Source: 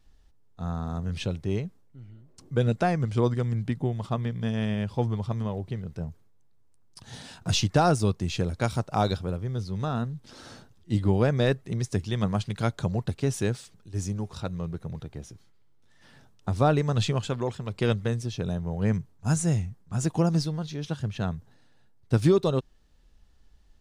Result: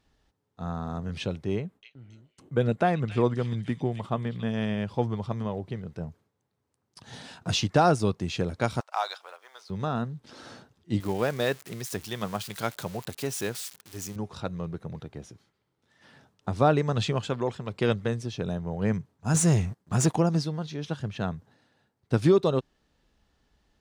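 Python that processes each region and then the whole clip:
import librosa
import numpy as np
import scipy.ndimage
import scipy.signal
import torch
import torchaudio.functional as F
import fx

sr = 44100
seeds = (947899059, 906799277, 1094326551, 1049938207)

y = fx.chain(x, sr, fx.gate_hold(open_db=-44.0, close_db=-47.0, hold_ms=71.0, range_db=-21, attack_ms=1.4, release_ms=100.0),
    fx.peak_eq(hz=5300.0, db=-8.0, octaves=0.81),
    fx.echo_stepped(ms=275, hz=3600.0, octaves=0.7, feedback_pct=70, wet_db=-0.5), at=(1.55, 4.51))
y = fx.chain(y, sr, fx.law_mismatch(coded='A'),
    fx.highpass(hz=780.0, slope=24), at=(8.8, 9.7))
y = fx.chain(y, sr, fx.crossing_spikes(level_db=-27.5),
    fx.low_shelf(hz=380.0, db=-9.0), at=(11.0, 14.16))
y = fx.chain(y, sr, fx.high_shelf(hz=4000.0, db=5.0),
    fx.leveller(passes=2), at=(19.34, 20.16))
y = fx.highpass(y, sr, hz=180.0, slope=6)
y = fx.high_shelf(y, sr, hz=5500.0, db=-8.5)
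y = F.gain(torch.from_numpy(y), 2.0).numpy()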